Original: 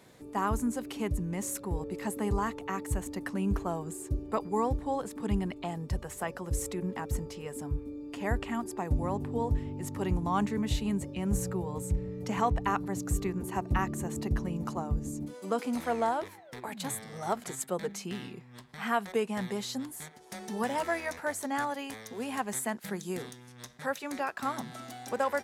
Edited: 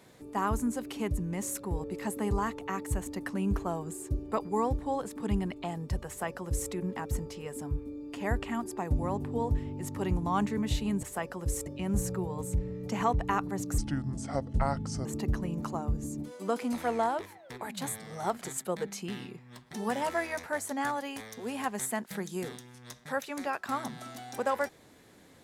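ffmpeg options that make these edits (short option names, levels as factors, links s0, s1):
-filter_complex "[0:a]asplit=6[s0][s1][s2][s3][s4][s5];[s0]atrim=end=11.032[s6];[s1]atrim=start=6.078:end=6.712[s7];[s2]atrim=start=11.028:end=13.154[s8];[s3]atrim=start=13.15:end=14.08,asetpts=PTS-STARTPTS,asetrate=32193,aresample=44100,atrim=end_sample=56182,asetpts=PTS-STARTPTS[s9];[s4]atrim=start=14.076:end=18.762[s10];[s5]atrim=start=20.468[s11];[s6][s7]acrossfade=d=0.004:c1=hsin:c2=hsin[s12];[s12][s8]acrossfade=d=0.004:c1=hsin:c2=hsin[s13];[s13][s9]acrossfade=d=0.004:c1=hsin:c2=hsin[s14];[s14][s10]acrossfade=d=0.004:c1=hsin:c2=hsin[s15];[s15][s11]acrossfade=d=0.004:c1=hsin:c2=hsin"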